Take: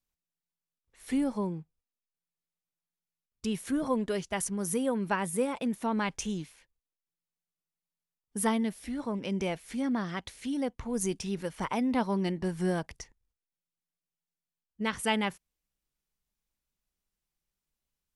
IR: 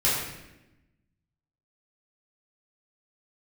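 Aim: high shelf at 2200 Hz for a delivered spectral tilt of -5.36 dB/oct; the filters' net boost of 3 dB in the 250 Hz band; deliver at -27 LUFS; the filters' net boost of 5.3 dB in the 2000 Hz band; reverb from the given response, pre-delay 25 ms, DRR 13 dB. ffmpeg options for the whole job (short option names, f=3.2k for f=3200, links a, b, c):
-filter_complex "[0:a]equalizer=f=250:t=o:g=3.5,equalizer=f=2k:t=o:g=8,highshelf=f=2.2k:g=-3.5,asplit=2[a][b];[1:a]atrim=start_sample=2205,adelay=25[c];[b][c]afir=irnorm=-1:irlink=0,volume=-26.5dB[d];[a][d]amix=inputs=2:normalize=0,volume=2dB"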